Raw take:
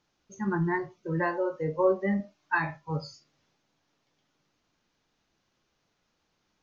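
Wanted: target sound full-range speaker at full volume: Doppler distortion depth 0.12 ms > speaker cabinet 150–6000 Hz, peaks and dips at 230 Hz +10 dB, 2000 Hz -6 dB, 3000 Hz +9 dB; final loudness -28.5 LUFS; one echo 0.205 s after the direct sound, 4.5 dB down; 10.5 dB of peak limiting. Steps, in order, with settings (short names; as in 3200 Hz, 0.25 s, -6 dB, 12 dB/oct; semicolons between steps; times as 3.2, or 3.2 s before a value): limiter -23 dBFS; echo 0.205 s -4.5 dB; Doppler distortion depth 0.12 ms; speaker cabinet 150–6000 Hz, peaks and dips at 230 Hz +10 dB, 2000 Hz -6 dB, 3000 Hz +9 dB; gain +3 dB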